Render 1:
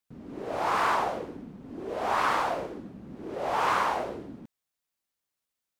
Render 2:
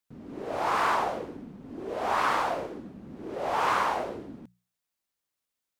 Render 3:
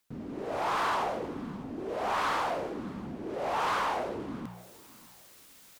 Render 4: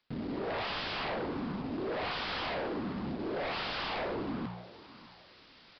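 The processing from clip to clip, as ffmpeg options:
-af "bandreject=f=60:t=h:w=6,bandreject=f=120:t=h:w=6,bandreject=f=180:t=h:w=6"
-af "areverse,acompressor=mode=upward:threshold=0.0282:ratio=2.5,areverse,asoftclip=type=tanh:threshold=0.0596,aecho=1:1:604|1208:0.0891|0.0232"
-af "aeval=exprs='0.0237*(abs(mod(val(0)/0.0237+3,4)-2)-1)':c=same,acrusher=bits=3:mode=log:mix=0:aa=0.000001,aresample=11025,aresample=44100,volume=1.41"

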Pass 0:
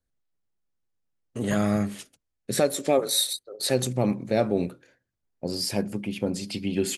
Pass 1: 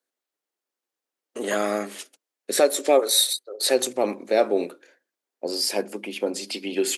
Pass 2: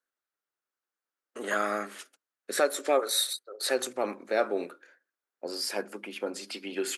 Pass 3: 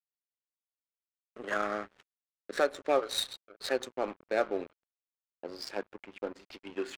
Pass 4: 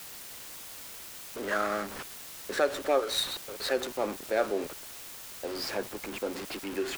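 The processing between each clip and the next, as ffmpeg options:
-af "highpass=f=320:w=0.5412,highpass=f=320:w=1.3066,volume=1.68"
-af "equalizer=f=1400:w=1.6:g=11.5,volume=0.376"
-af "aeval=exprs='sgn(val(0))*max(abs(val(0))-0.00841,0)':c=same,acrusher=bits=7:mode=log:mix=0:aa=0.000001,adynamicsmooth=sensitivity=4.5:basefreq=2400,volume=0.841"
-af "aeval=exprs='val(0)+0.5*0.0237*sgn(val(0))':c=same"

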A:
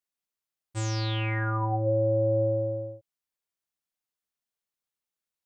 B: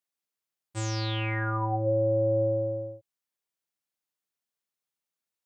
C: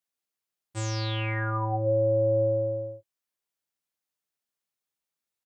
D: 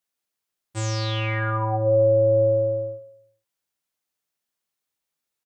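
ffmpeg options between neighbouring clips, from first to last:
-af "highpass=95"
-filter_complex "[0:a]asplit=2[s0][s1];[s1]adelay=20,volume=0.224[s2];[s0][s2]amix=inputs=2:normalize=0"
-af "aecho=1:1:62|124|186|248|310|372|434:0.266|0.157|0.0926|0.0546|0.0322|0.019|0.0112,volume=1.58"

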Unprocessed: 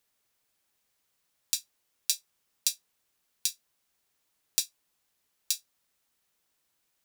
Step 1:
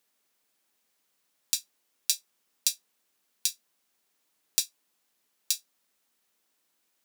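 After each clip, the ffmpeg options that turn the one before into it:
-af "lowshelf=f=160:t=q:w=1.5:g=-9,volume=1.19"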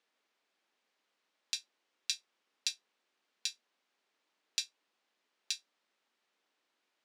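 -af "highpass=270,lowpass=3800"

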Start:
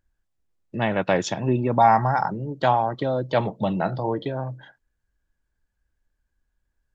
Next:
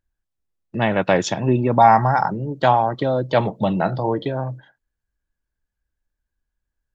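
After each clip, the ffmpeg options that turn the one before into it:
-af "agate=range=0.355:threshold=0.0126:ratio=16:detection=peak,volume=1.58"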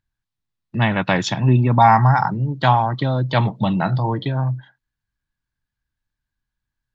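-af "equalizer=f=125:t=o:w=1:g=12,equalizer=f=250:t=o:w=1:g=4,equalizer=f=500:t=o:w=1:g=-5,equalizer=f=1000:t=o:w=1:g=7,equalizer=f=2000:t=o:w=1:g=5,equalizer=f=4000:t=o:w=1:g=9,volume=0.562"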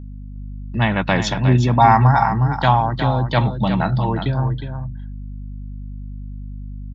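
-af "aeval=exprs='val(0)+0.0251*(sin(2*PI*50*n/s)+sin(2*PI*2*50*n/s)/2+sin(2*PI*3*50*n/s)/3+sin(2*PI*4*50*n/s)/4+sin(2*PI*5*50*n/s)/5)':c=same,aecho=1:1:361:0.376"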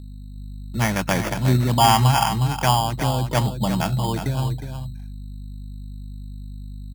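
-af "acrusher=samples=11:mix=1:aa=0.000001,volume=0.668"

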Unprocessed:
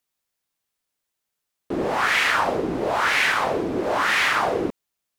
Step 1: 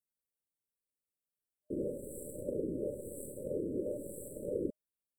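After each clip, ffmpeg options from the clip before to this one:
-af "aeval=exprs='0.447*(cos(1*acos(clip(val(0)/0.447,-1,1)))-cos(1*PI/2))+0.0891*(cos(3*acos(clip(val(0)/0.447,-1,1)))-cos(3*PI/2))+0.02*(cos(4*acos(clip(val(0)/0.447,-1,1)))-cos(4*PI/2))+0.00708*(cos(6*acos(clip(val(0)/0.447,-1,1)))-cos(6*PI/2))':c=same,afftfilt=real='re*(1-between(b*sr/4096,610,7600))':imag='im*(1-between(b*sr/4096,610,7600))':win_size=4096:overlap=0.75,volume=0.631"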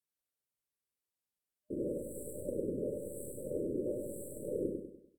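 -filter_complex "[0:a]asplit=2[s0][s1];[s1]aecho=0:1:98|196|294|392|490:0.631|0.265|0.111|0.0467|0.0196[s2];[s0][s2]amix=inputs=2:normalize=0,volume=0.841" -ar 48000 -c:a libvorbis -b:a 192k

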